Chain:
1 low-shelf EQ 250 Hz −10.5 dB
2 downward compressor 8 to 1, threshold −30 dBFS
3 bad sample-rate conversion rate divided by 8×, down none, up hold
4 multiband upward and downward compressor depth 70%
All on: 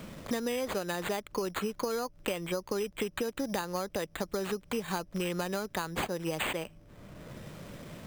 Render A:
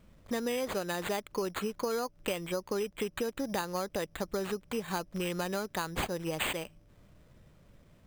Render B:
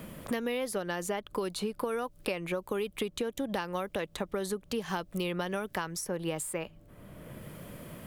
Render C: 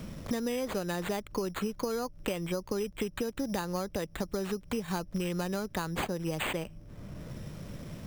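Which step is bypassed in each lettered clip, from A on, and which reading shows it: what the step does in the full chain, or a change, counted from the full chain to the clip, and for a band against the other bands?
4, change in crest factor −1.5 dB
3, 8 kHz band +1.5 dB
1, 125 Hz band +5.0 dB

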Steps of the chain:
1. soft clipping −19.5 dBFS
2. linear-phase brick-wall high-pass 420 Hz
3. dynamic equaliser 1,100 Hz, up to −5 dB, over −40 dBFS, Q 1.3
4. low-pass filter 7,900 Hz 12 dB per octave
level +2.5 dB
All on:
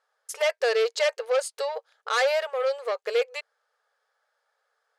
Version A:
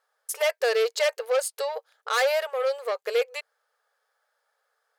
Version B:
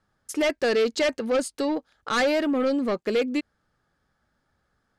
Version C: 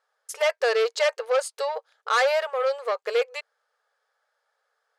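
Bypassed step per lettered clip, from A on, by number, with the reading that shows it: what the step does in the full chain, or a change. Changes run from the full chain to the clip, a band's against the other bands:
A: 4, 8 kHz band +3.0 dB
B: 2, change in crest factor −3.0 dB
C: 3, 1 kHz band +3.0 dB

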